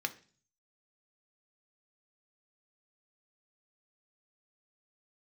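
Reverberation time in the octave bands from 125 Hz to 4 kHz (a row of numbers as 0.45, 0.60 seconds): 0.80, 0.55, 0.45, 0.40, 0.40, 0.50 seconds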